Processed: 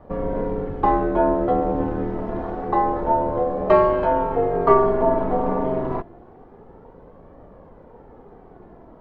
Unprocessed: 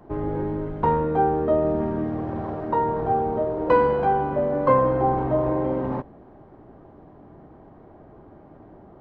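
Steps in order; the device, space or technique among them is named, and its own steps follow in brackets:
alien voice (ring modulation 120 Hz; flanger 0.27 Hz, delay 1.6 ms, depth 1.8 ms, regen +51%)
level +9 dB

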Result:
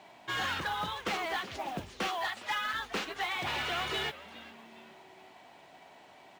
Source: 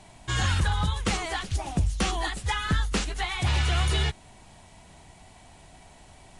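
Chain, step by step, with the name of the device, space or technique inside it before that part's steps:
0:02.07–0:02.73: high-pass filter 420 Hz → 920 Hz 24 dB per octave
echo with shifted repeats 409 ms, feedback 37%, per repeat −150 Hz, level −18.5 dB
carbon microphone (band-pass filter 330–3,500 Hz; soft clipping −26.5 dBFS, distortion −15 dB; noise that follows the level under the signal 24 dB)

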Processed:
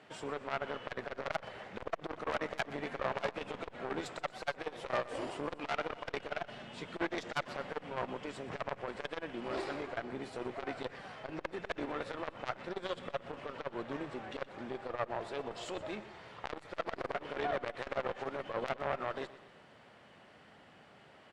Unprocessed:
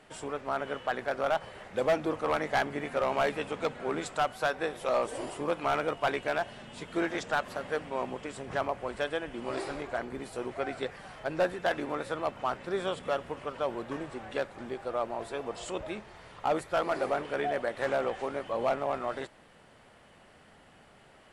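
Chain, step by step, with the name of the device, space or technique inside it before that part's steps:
valve radio (band-pass filter 95–4,400 Hz; tube saturation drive 25 dB, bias 0.75; saturating transformer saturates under 830 Hz)
high-shelf EQ 5,500 Hz +6 dB
repeating echo 122 ms, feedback 51%, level −17 dB
level +3 dB

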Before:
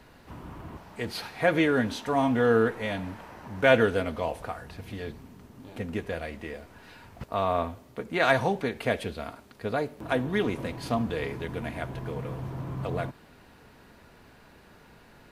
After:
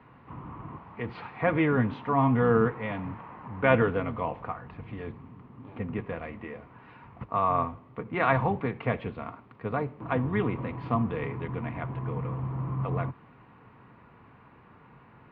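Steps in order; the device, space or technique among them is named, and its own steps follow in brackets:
sub-octave bass pedal (sub-octave generator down 1 octave, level −6 dB; loudspeaker in its box 63–2,400 Hz, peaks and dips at 68 Hz −9 dB, 130 Hz +5 dB, 380 Hz −3 dB, 610 Hz −6 dB, 1,100 Hz +8 dB, 1,600 Hz −6 dB)

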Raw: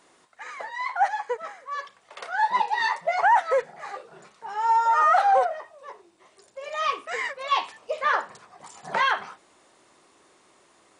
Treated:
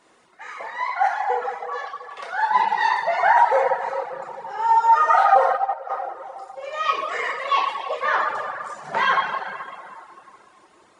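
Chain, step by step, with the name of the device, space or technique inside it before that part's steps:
swimming-pool hall (convolution reverb RT60 2.5 s, pre-delay 7 ms, DRR −5 dB; high-shelf EQ 4,800 Hz −6 dB)
0:05.35–0:05.90: noise gate −16 dBFS, range −6 dB
reverb reduction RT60 0.77 s

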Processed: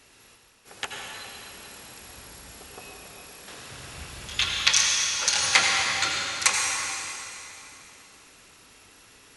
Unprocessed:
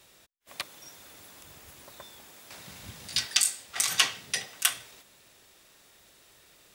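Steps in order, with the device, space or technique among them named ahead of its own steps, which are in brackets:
slowed and reverbed (speed change −28%; convolution reverb RT60 3.1 s, pre-delay 74 ms, DRR −0.5 dB)
level +2 dB

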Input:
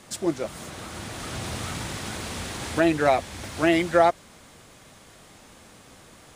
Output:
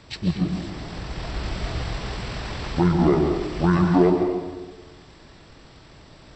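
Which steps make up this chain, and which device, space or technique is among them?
0:00.96–0:01.85: low-shelf EQ 100 Hz +6 dB
monster voice (pitch shifter −11 semitones; low-shelf EQ 120 Hz +5.5 dB; convolution reverb RT60 1.3 s, pre-delay 119 ms, DRR 3 dB)

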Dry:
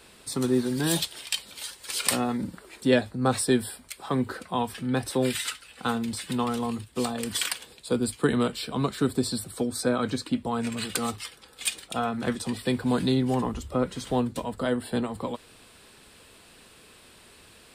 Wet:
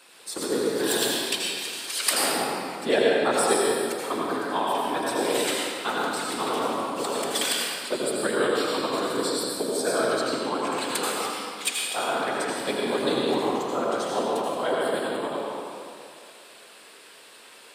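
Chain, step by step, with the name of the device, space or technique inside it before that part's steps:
whispering ghost (random phases in short frames; high-pass filter 420 Hz 12 dB per octave; convolution reverb RT60 2.5 s, pre-delay 76 ms, DRR −4 dB)

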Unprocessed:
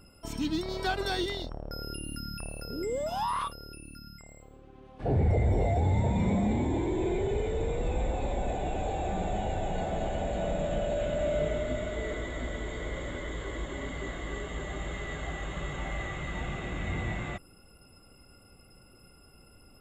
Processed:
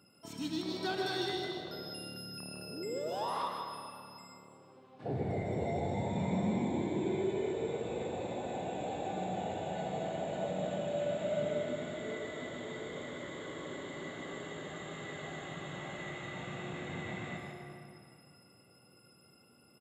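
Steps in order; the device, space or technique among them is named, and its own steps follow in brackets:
PA in a hall (high-pass filter 120 Hz 24 dB per octave; parametric band 4,000 Hz +4 dB 0.5 octaves; single-tap delay 153 ms −5 dB; convolution reverb RT60 2.5 s, pre-delay 59 ms, DRR 3.5 dB)
level −7.5 dB

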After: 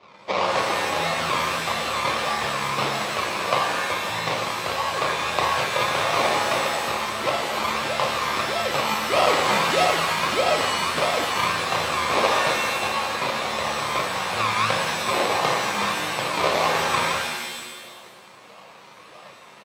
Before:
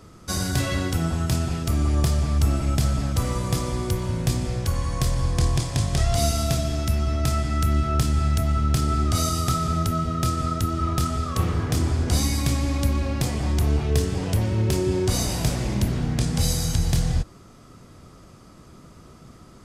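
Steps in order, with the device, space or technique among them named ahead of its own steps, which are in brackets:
Chebyshev band-stop filter 210–750 Hz, order 4
double-tracking delay 36 ms −3.5 dB
circuit-bent sampling toy (sample-and-hold swept by an LFO 31×, swing 60% 1.6 Hz; loudspeaker in its box 500–5,100 Hz, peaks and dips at 550 Hz +6 dB, 1,100 Hz +9 dB, 1,600 Hz −9 dB, 2,300 Hz +6 dB, 3,900 Hz +3 dB)
reverb with rising layers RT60 1.3 s, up +7 semitones, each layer −2 dB, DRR 4 dB
level +6 dB

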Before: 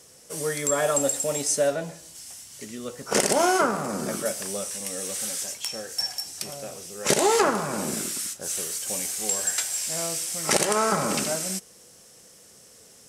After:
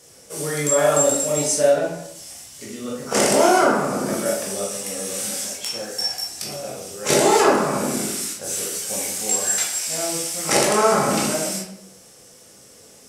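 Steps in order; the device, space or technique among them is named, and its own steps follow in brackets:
bathroom (convolution reverb RT60 0.75 s, pre-delay 15 ms, DRR −3.5 dB)

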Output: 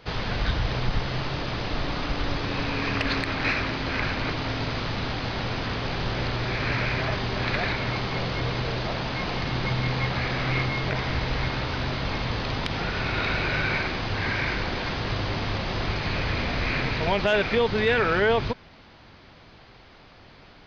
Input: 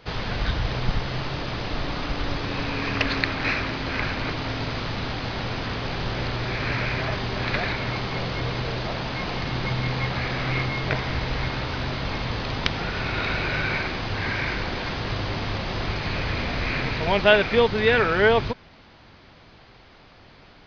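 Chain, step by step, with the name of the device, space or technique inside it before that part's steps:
soft clipper into limiter (soft clipping −5 dBFS, distortion −27 dB; brickwall limiter −13.5 dBFS, peak gain reduction 7 dB)

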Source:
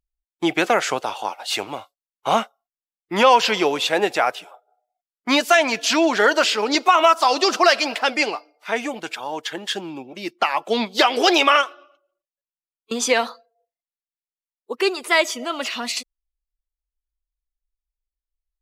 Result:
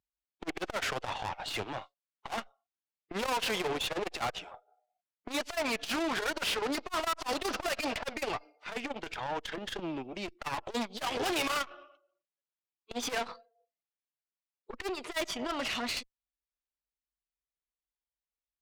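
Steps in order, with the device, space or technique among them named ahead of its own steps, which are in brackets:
valve radio (band-pass filter 97–4,100 Hz; tube saturation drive 29 dB, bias 0.75; saturating transformer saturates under 260 Hz)
level +1 dB

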